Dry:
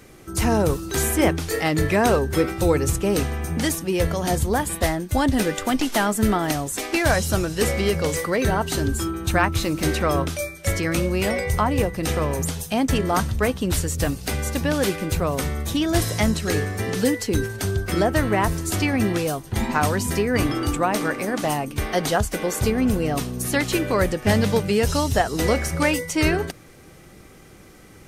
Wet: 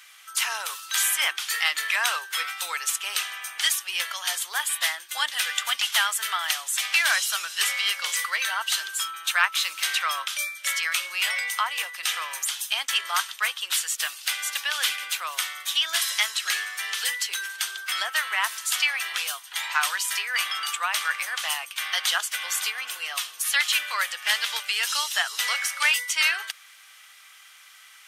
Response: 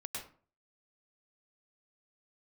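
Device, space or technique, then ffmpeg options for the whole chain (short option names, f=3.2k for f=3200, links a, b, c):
headphones lying on a table: -af "highpass=f=1.2k:w=0.5412,highpass=f=1.2k:w=1.3066,equalizer=f=3.2k:t=o:w=0.52:g=8,volume=2dB"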